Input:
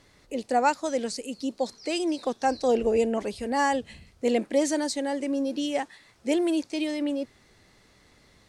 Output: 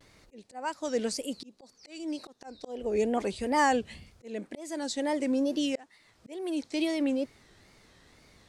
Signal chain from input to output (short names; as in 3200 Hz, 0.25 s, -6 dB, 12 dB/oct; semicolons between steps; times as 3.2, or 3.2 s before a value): wow and flutter 130 cents; auto swell 0.555 s